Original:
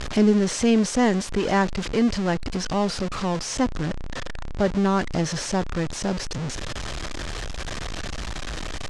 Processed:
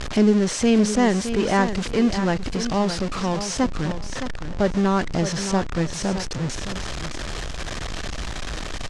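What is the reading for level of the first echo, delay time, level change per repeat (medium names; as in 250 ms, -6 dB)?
-10.0 dB, 616 ms, -14.5 dB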